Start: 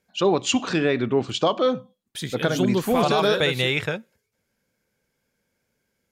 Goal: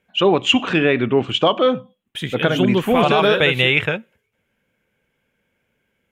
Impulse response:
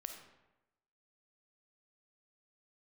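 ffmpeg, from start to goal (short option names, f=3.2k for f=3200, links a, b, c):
-af "highshelf=f=3.7k:t=q:w=3:g=-7.5,volume=4.5dB"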